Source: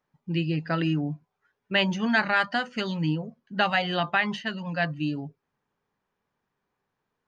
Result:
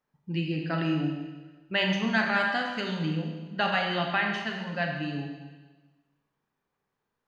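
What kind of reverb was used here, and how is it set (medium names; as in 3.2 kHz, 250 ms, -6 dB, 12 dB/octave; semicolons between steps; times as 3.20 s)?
Schroeder reverb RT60 1.3 s, combs from 28 ms, DRR 1.5 dB; trim -4 dB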